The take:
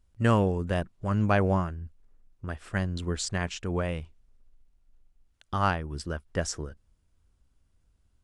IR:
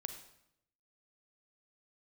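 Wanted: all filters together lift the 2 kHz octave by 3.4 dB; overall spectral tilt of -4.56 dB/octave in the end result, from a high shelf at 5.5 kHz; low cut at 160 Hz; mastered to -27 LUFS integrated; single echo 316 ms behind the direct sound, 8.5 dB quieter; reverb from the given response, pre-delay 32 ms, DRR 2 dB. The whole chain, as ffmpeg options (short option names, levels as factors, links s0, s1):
-filter_complex "[0:a]highpass=160,equalizer=f=2000:t=o:g=5.5,highshelf=f=5500:g=-7.5,aecho=1:1:316:0.376,asplit=2[s0][s1];[1:a]atrim=start_sample=2205,adelay=32[s2];[s1][s2]afir=irnorm=-1:irlink=0,volume=1[s3];[s0][s3]amix=inputs=2:normalize=0,volume=1.12"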